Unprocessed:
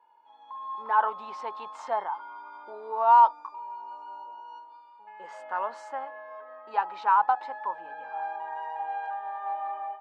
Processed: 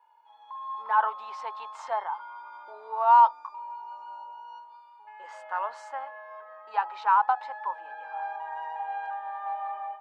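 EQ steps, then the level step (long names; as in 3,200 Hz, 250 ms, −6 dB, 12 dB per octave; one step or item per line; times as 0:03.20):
high-pass filter 670 Hz 12 dB per octave
+1.0 dB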